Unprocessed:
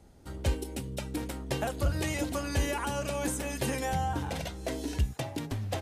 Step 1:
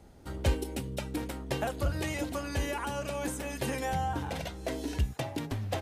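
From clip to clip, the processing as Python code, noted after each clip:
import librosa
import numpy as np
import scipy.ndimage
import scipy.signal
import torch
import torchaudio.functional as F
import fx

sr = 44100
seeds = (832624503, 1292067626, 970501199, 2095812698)

y = fx.peak_eq(x, sr, hz=8200.0, db=-4.0, octaves=1.9)
y = fx.rider(y, sr, range_db=5, speed_s=2.0)
y = fx.low_shelf(y, sr, hz=320.0, db=-2.5)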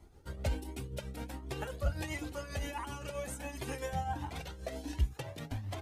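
y = fx.tremolo_shape(x, sr, shape='triangle', hz=7.6, depth_pct=60)
y = y + 10.0 ** (-21.5 / 20.0) * np.pad(y, (int(518 * sr / 1000.0), 0))[:len(y)]
y = fx.comb_cascade(y, sr, direction='rising', hz=1.4)
y = y * 10.0 ** (1.5 / 20.0)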